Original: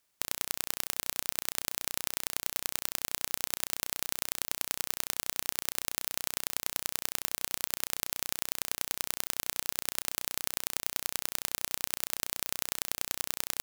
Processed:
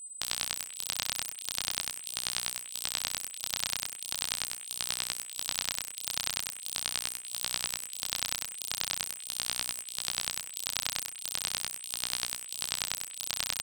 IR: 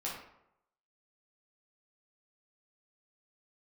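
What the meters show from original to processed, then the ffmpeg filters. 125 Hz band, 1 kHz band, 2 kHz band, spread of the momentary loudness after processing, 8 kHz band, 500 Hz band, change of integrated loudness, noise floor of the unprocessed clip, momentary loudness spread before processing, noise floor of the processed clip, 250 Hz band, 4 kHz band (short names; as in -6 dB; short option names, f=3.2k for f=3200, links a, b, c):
-0.5 dB, -0.5 dB, +1.0 dB, 3 LU, +1.0 dB, -4.5 dB, 0.0 dB, -76 dBFS, 1 LU, -45 dBFS, -5.0 dB, +5.0 dB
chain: -filter_complex "[0:a]highshelf=f=2.7k:t=q:w=1.5:g=7.5,aeval=exprs='val(0)*sin(2*PI*400*n/s)':c=same,acrossover=split=370|6200[a][b][c];[c]aeval=exprs='0.447*(abs(mod(val(0)/0.447+3,4)-2)-1)':c=same[d];[a][b][d]amix=inputs=3:normalize=0,aeval=exprs='val(0)+0.0112*sin(2*PI*8100*n/s)':c=same,flanger=delay=17:depth=6.6:speed=0.41"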